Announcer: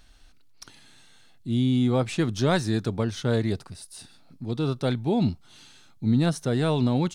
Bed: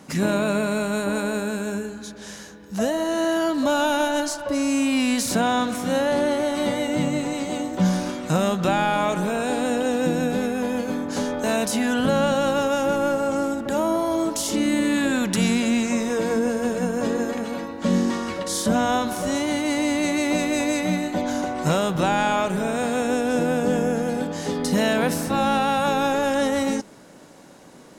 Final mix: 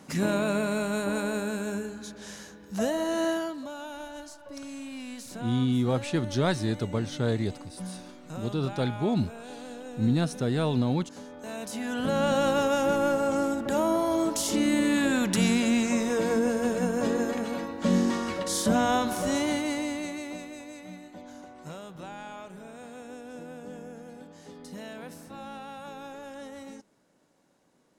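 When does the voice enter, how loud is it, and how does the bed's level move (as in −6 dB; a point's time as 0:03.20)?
3.95 s, −3.0 dB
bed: 0:03.29 −4.5 dB
0:03.69 −18.5 dB
0:11.30 −18.5 dB
0:12.36 −3 dB
0:19.47 −3 dB
0:20.63 −20.5 dB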